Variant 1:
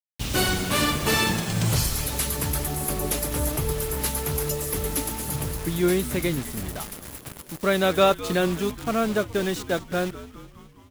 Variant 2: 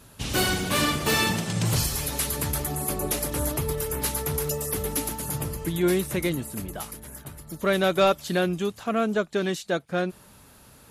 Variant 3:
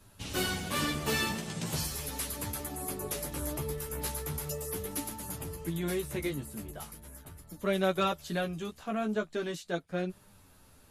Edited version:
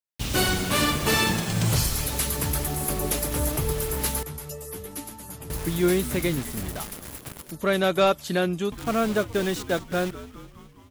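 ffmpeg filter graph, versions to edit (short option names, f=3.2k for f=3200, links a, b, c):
-filter_complex "[0:a]asplit=3[a][b][c];[a]atrim=end=4.232[d];[2:a]atrim=start=4.228:end=5.502[e];[b]atrim=start=5.498:end=7.512[f];[1:a]atrim=start=7.508:end=8.722[g];[c]atrim=start=8.718[h];[d][e]acrossfade=d=0.004:c1=hsin:c2=hsin[i];[i][f]acrossfade=d=0.004:c1=hsin:c2=hsin[j];[j][g]acrossfade=d=0.004:c1=hsin:c2=hsin[k];[k][h]acrossfade=d=0.004:c1=hsin:c2=hsin"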